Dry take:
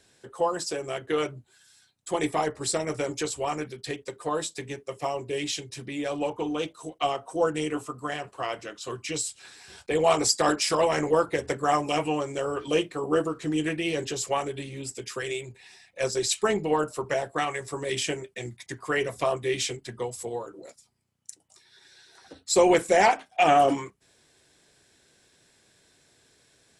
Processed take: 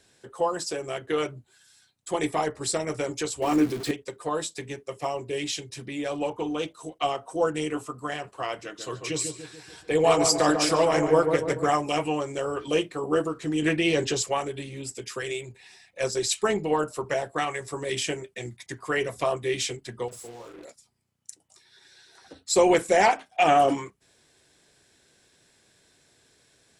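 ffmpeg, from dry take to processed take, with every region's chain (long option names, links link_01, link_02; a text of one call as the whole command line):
ffmpeg -i in.wav -filter_complex "[0:a]asettb=1/sr,asplit=3[link_01][link_02][link_03];[link_01]atrim=end=3.424[link_04];[link_02]atrim=start=3.42:end=3.91,asetpts=PTS-STARTPTS,afade=type=in:duration=0.004:curve=qsin,afade=type=out:start_time=0.486:duration=0.004:curve=qsin,aeval=exprs='val(0)+0.5*0.02*sgn(val(0))':channel_layout=same,equalizer=frequency=300:width=2.5:gain=13.5[link_05];[link_03]atrim=start=3.906[link_06];[link_04][link_05]acrossfade=duration=0.004:curve1=hsin:curve2=qsin[link_07];[link_07][link_06]acrossfade=duration=0.004:curve1=qsin:curve2=hsin,asettb=1/sr,asplit=3[link_08][link_09][link_10];[link_08]atrim=end=8.644[link_11];[link_09]atrim=start=8.64:end=11.7,asetpts=PTS-STARTPTS,afade=type=in:duration=0.004:curve=qsin,afade=type=out:start_time=3.056:duration=0.004:curve=qsin,aecho=1:1:6.4:0.36,atrim=end_sample=134946,asplit=2[link_12][link_13];[link_13]adelay=144,lowpass=frequency=1500:poles=1,volume=-5.5dB,asplit=2[link_14][link_15];[link_15]adelay=144,lowpass=frequency=1500:poles=1,volume=0.52,asplit=2[link_16][link_17];[link_17]adelay=144,lowpass=frequency=1500:poles=1,volume=0.52,asplit=2[link_18][link_19];[link_19]adelay=144,lowpass=frequency=1500:poles=1,volume=0.52,asplit=2[link_20][link_21];[link_21]adelay=144,lowpass=frequency=1500:poles=1,volume=0.52,asplit=2[link_22][link_23];[link_23]adelay=144,lowpass=frequency=1500:poles=1,volume=0.52,asplit=2[link_24][link_25];[link_25]adelay=144,lowpass=frequency=1500:poles=1,volume=0.52[link_26];[link_12][link_14][link_16][link_18][link_20][link_22][link_24][link_26]amix=inputs=8:normalize=0,atrim=end_sample=134946[link_27];[link_10]atrim=start=11.696[link_28];[link_11][link_27]acrossfade=duration=0.004:curve1=hsin:curve2=qsin[link_29];[link_29][link_28]acrossfade=duration=0.004:curve1=qsin:curve2=hsin,asettb=1/sr,asplit=3[link_30][link_31][link_32];[link_30]atrim=end=13.624[link_33];[link_31]atrim=start=13.62:end=14.23,asetpts=PTS-STARTPTS,afade=type=in:duration=0.004:curve=qsin,afade=type=out:start_time=0.606:duration=0.004:curve=qsin,lowpass=8200,acontrast=30[link_34];[link_32]atrim=start=14.226[link_35];[link_33][link_34]acrossfade=duration=0.004:curve1=hsin:curve2=qsin[link_36];[link_36][link_35]acrossfade=duration=0.004:curve1=qsin:curve2=hsin,asettb=1/sr,asplit=3[link_37][link_38][link_39];[link_37]atrim=end=20.084[link_40];[link_38]atrim=start=20.08:end=20.65,asetpts=PTS-STARTPTS,afade=type=in:duration=0.004:curve=qsin,afade=type=out:start_time=0.566:duration=0.004:curve=qsin,acompressor=threshold=-42dB:ratio=3:attack=3.2:release=140:knee=1:detection=peak,acrusher=bits=7:mix=0:aa=0.5,asplit=2[link_41][link_42];[link_42]adelay=43,volume=-4.5dB[link_43];[link_41][link_43]amix=inputs=2:normalize=0,atrim=end_sample=25137[link_44];[link_39]atrim=start=20.646[link_45];[link_40][link_44]acrossfade=duration=0.004:curve1=hsin:curve2=qsin[link_46];[link_46][link_45]acrossfade=duration=0.004:curve1=qsin:curve2=hsin" out.wav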